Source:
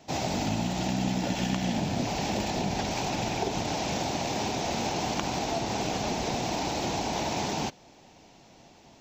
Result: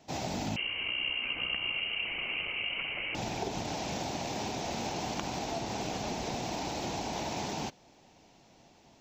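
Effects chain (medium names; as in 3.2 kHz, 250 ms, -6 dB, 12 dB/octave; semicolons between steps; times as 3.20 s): 0.56–3.15 s: frequency inversion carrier 3 kHz; trim -5.5 dB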